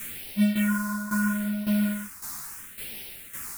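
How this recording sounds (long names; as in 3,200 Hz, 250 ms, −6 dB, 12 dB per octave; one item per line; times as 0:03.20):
a quantiser's noise floor 6 bits, dither triangular
phaser sweep stages 4, 0.75 Hz, lowest notch 490–1,200 Hz
tremolo saw down 1.8 Hz, depth 75%
a shimmering, thickened sound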